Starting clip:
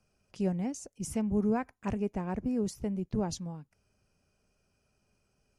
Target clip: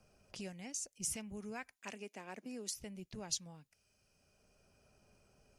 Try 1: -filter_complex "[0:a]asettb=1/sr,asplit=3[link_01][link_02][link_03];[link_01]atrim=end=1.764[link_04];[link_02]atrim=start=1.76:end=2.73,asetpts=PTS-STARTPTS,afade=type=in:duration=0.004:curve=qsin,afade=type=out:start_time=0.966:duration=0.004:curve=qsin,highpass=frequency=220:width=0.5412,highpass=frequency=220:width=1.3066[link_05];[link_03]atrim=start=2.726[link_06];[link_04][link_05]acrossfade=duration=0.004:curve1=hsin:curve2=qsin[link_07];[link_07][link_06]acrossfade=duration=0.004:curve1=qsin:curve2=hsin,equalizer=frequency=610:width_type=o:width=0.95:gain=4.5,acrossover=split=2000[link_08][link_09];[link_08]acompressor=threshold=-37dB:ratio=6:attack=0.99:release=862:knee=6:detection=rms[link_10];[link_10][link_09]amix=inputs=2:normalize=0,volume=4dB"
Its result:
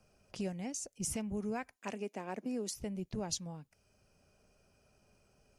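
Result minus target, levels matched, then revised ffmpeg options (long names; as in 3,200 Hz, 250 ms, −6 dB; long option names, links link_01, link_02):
downward compressor: peak gain reduction −9 dB
-filter_complex "[0:a]asettb=1/sr,asplit=3[link_01][link_02][link_03];[link_01]atrim=end=1.764[link_04];[link_02]atrim=start=1.76:end=2.73,asetpts=PTS-STARTPTS,afade=type=in:duration=0.004:curve=qsin,afade=type=out:start_time=0.966:duration=0.004:curve=qsin,highpass=frequency=220:width=0.5412,highpass=frequency=220:width=1.3066[link_05];[link_03]atrim=start=2.726[link_06];[link_04][link_05]acrossfade=duration=0.004:curve1=hsin:curve2=qsin[link_07];[link_07][link_06]acrossfade=duration=0.004:curve1=qsin:curve2=hsin,equalizer=frequency=610:width_type=o:width=0.95:gain=4.5,acrossover=split=2000[link_08][link_09];[link_08]acompressor=threshold=-47.5dB:ratio=6:attack=0.99:release=862:knee=6:detection=rms[link_10];[link_10][link_09]amix=inputs=2:normalize=0,volume=4dB"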